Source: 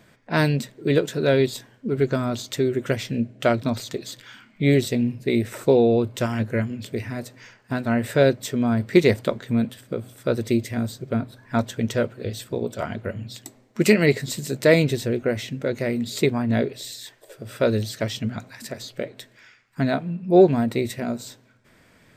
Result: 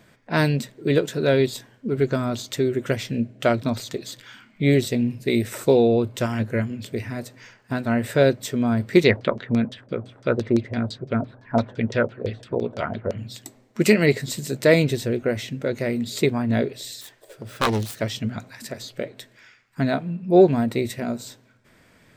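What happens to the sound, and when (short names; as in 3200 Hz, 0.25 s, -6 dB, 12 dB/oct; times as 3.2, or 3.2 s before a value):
5.1–5.88 high shelf 3300 Hz +6 dB
9.04–13.18 LFO low-pass saw down 5.9 Hz 490–5800 Hz
17.01–18 self-modulated delay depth 0.94 ms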